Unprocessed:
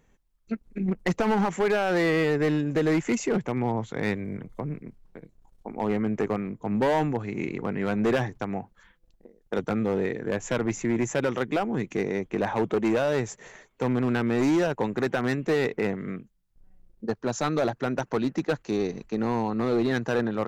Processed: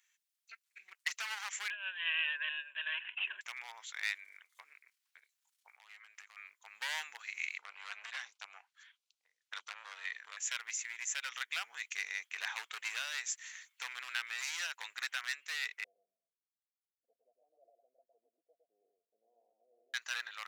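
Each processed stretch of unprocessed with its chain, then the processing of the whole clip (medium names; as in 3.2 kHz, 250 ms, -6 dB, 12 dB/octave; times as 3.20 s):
1.70–3.41 s: rippled EQ curve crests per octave 1.4, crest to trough 18 dB + compressor with a negative ratio -23 dBFS, ratio -0.5 + careless resampling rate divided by 6×, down none, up filtered
5.69–6.37 s: high-pass 510 Hz + compression 4:1, threshold -41 dBFS
7.58–10.37 s: distance through air 54 m + LFO notch square 1.5 Hz 320–1800 Hz + transformer saturation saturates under 680 Hz
15.84–19.94 s: touch-sensitive flanger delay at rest 11.7 ms, full sweep at -24.5 dBFS + rippled Chebyshev low-pass 710 Hz, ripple 6 dB + delay 109 ms -4 dB
whole clip: Bessel high-pass 2.6 kHz, order 4; gain riding within 3 dB 0.5 s; trim +2.5 dB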